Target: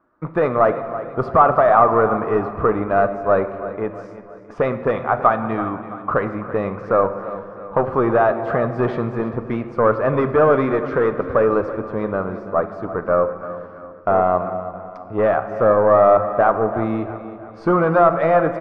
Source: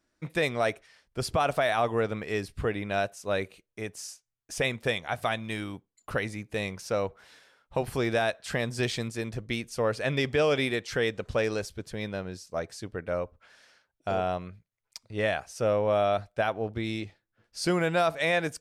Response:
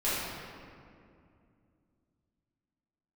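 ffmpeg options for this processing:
-filter_complex "[0:a]lowshelf=frequency=110:gain=-11.5,acrossover=split=870[link_01][link_02];[link_01]acontrast=81[link_03];[link_03][link_02]amix=inputs=2:normalize=0,aeval=exprs='0.316*(cos(1*acos(clip(val(0)/0.316,-1,1)))-cos(1*PI/2))+0.0316*(cos(5*acos(clip(val(0)/0.316,-1,1)))-cos(5*PI/2))+0.01*(cos(6*acos(clip(val(0)/0.316,-1,1)))-cos(6*PI/2))+0.0126*(cos(8*acos(clip(val(0)/0.316,-1,1)))-cos(8*PI/2))':channel_layout=same,lowpass=frequency=1200:width_type=q:width=6,aecho=1:1:333|666|999|1332|1665:0.188|0.0923|0.0452|0.0222|0.0109,asplit=2[link_04][link_05];[1:a]atrim=start_sample=2205[link_06];[link_05][link_06]afir=irnorm=-1:irlink=0,volume=-19dB[link_07];[link_04][link_07]amix=inputs=2:normalize=0,volume=1dB"

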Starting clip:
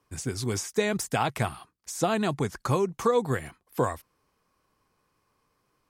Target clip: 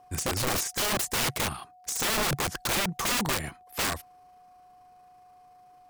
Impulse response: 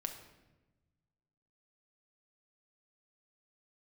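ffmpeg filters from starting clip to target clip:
-af "tremolo=f=27:d=0.333,aeval=exprs='(mod(26.6*val(0)+1,2)-1)/26.6':channel_layout=same,aeval=exprs='val(0)+0.00112*sin(2*PI*730*n/s)':channel_layout=same,volume=6.5dB"

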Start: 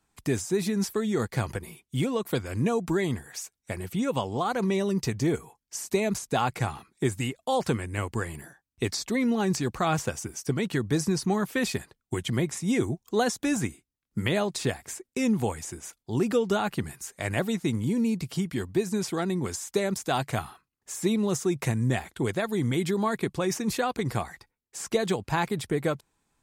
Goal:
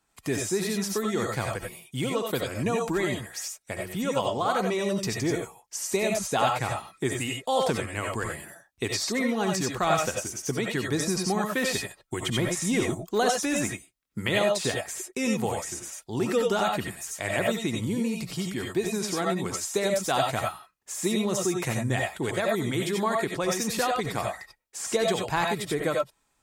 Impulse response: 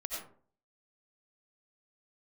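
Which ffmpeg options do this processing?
-filter_complex "[0:a]lowshelf=frequency=260:gain=-7.5,asettb=1/sr,asplit=3[link_01][link_02][link_03];[link_01]atrim=end=12.214[link_04];[link_02]atrim=start=12.21:end=13.18,asetpts=PTS-STARTPTS,afade=type=in:duration=0.004:curve=qsin,afade=type=out:start_time=0.966:duration=0.004:curve=qsin,aeval=exprs='0.158*(cos(1*acos(clip(val(0)/0.158,-1,1)))-cos(1*PI/2))+0.0112*(cos(5*acos(clip(val(0)/0.158,-1,1)))-cos(5*PI/2))+0.00112*(cos(8*acos(clip(val(0)/0.158,-1,1)))-cos(8*PI/2))':channel_layout=same[link_05];[link_03]atrim=start=13.176[link_06];[link_04][link_05]acrossfade=duration=0.004:curve1=hsin:curve2=qsin[link_07];[link_07][link_06]acrossfade=duration=0.004:curve1=qsin:curve2=hsin[link_08];[1:a]atrim=start_sample=2205,atrim=end_sample=4410[link_09];[link_08][link_09]afir=irnorm=-1:irlink=0,volume=4.5dB"

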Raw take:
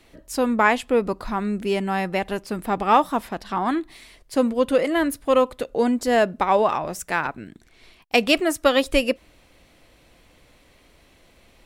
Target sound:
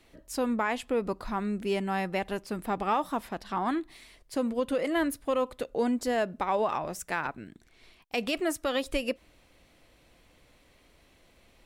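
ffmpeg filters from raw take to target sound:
ffmpeg -i in.wav -af "alimiter=limit=-12dB:level=0:latency=1:release=102,volume=-6dB" out.wav

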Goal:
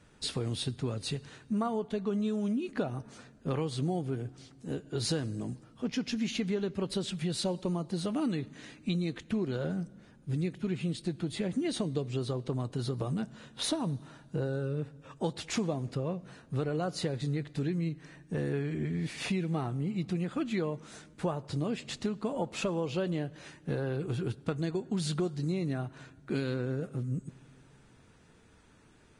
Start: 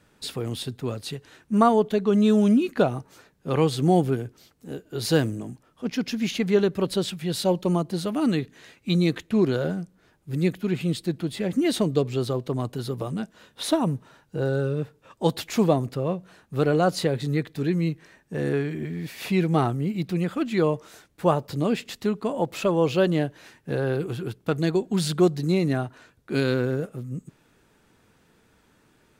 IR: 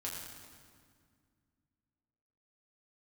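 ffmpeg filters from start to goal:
-filter_complex "[0:a]lowshelf=frequency=160:gain=6,acompressor=threshold=-27dB:ratio=6,asplit=2[link_01][link_02];[1:a]atrim=start_sample=2205[link_03];[link_02][link_03]afir=irnorm=-1:irlink=0,volume=-18.5dB[link_04];[link_01][link_04]amix=inputs=2:normalize=0,volume=-2.5dB" -ar 22050 -c:a libvorbis -b:a 32k

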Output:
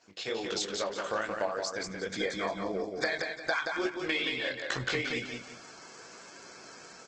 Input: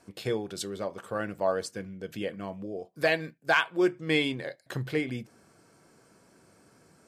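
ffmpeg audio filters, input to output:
ffmpeg -i in.wav -filter_complex "[0:a]dynaudnorm=framelen=280:gausssize=3:maxgain=12dB,highshelf=frequency=2700:gain=4,flanger=delay=16:depth=6.4:speed=2.3,asplit=3[link_01][link_02][link_03];[link_01]afade=type=out:start_time=1.55:duration=0.02[link_04];[link_02]asuperstop=centerf=2800:order=12:qfactor=3.6,afade=type=in:start_time=1.55:duration=0.02,afade=type=out:start_time=3.71:duration=0.02[link_05];[link_03]afade=type=in:start_time=3.71:duration=0.02[link_06];[link_04][link_05][link_06]amix=inputs=3:normalize=0,aresample=16000,aresample=44100,highpass=frequency=880:poles=1,acompressor=threshold=-33dB:ratio=8,aecho=1:1:177|354|531|708:0.596|0.191|0.061|0.0195,volume=4dB" -ar 48000 -c:a libopus -b:a 16k out.opus

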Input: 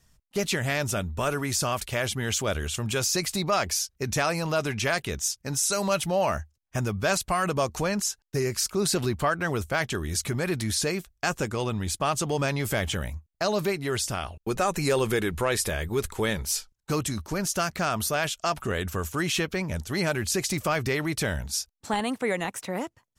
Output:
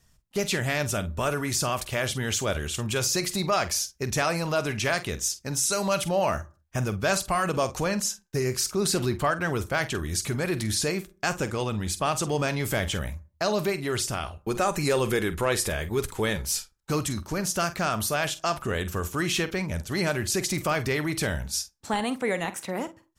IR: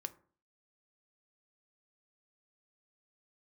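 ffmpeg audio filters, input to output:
-filter_complex "[0:a]asplit=2[link_01][link_02];[1:a]atrim=start_sample=2205,afade=type=out:start_time=0.27:duration=0.01,atrim=end_sample=12348,adelay=47[link_03];[link_02][link_03]afir=irnorm=-1:irlink=0,volume=-10dB[link_04];[link_01][link_04]amix=inputs=2:normalize=0"

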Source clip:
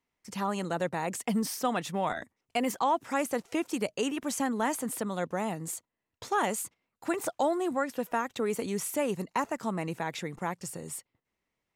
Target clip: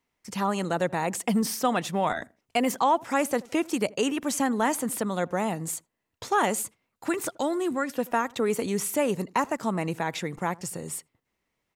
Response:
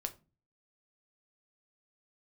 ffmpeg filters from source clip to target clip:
-filter_complex "[0:a]asettb=1/sr,asplit=3[link_01][link_02][link_03];[link_01]atrim=end=7.094[link_04];[link_02]atrim=start=7.09:end=7.93,asetpts=PTS-STARTPTS,afade=type=in:duration=0.004:curve=qsin,afade=type=out:start_time=0.836:duration=0.004:curve=qsin,equalizer=frequency=730:width_type=o:width=0.88:gain=-9[link_05];[link_03]atrim=start=7.926[link_06];[link_04][link_05]acrossfade=duration=0.004:curve1=hsin:curve2=qsin[link_07];[link_07][link_06]acrossfade=duration=0.004:curve1=qsin:curve2=hsin,asplit=2[link_08][link_09];[link_09]adelay=81,lowpass=frequency=920:poles=1,volume=-22dB,asplit=2[link_10][link_11];[link_11]adelay=81,lowpass=frequency=920:poles=1,volume=0.31[link_12];[link_10][link_12]amix=inputs=2:normalize=0[link_13];[link_08][link_13]amix=inputs=2:normalize=0,volume=4.5dB"

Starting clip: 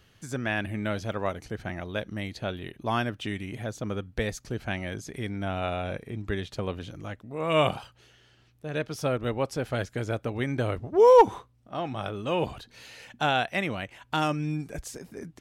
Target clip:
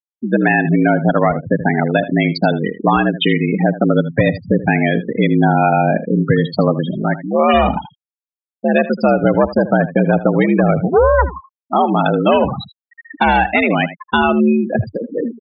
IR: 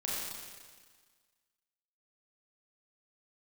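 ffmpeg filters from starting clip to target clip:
-filter_complex "[0:a]aresample=11025,aeval=exprs='clip(val(0),-1,0.0631)':channel_layout=same,aresample=44100,equalizer=frequency=290:width=2.5:gain=-3.5,acompressor=threshold=-30dB:ratio=10,afreqshift=67,apsyclip=24.5dB,afftfilt=real='re*gte(hypot(re,im),0.398)':imag='im*gte(hypot(re,im),0.398)':win_size=1024:overlap=0.75,asplit=2[link_01][link_02];[link_02]aecho=0:1:79:0.178[link_03];[link_01][link_03]amix=inputs=2:normalize=0,volume=-3dB"

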